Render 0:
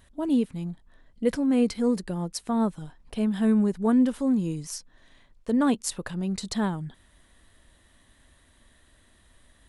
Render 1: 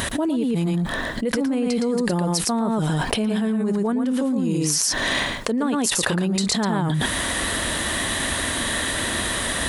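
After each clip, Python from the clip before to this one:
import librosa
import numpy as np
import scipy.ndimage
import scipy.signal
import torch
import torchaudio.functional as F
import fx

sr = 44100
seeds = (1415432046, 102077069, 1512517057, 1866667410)

y = fx.highpass(x, sr, hz=220.0, slope=6)
y = y + 10.0 ** (-4.5 / 20.0) * np.pad(y, (int(114 * sr / 1000.0), 0))[:len(y)]
y = fx.env_flatten(y, sr, amount_pct=100)
y = F.gain(torch.from_numpy(y), -3.0).numpy()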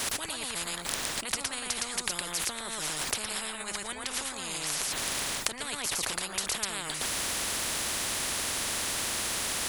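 y = fx.spectral_comp(x, sr, ratio=10.0)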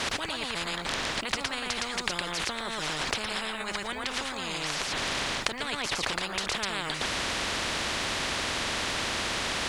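y = scipy.signal.sosfilt(scipy.signal.butter(2, 4300.0, 'lowpass', fs=sr, output='sos'), x)
y = fx.quant_dither(y, sr, seeds[0], bits=12, dither='triangular')
y = F.gain(torch.from_numpy(y), 5.0).numpy()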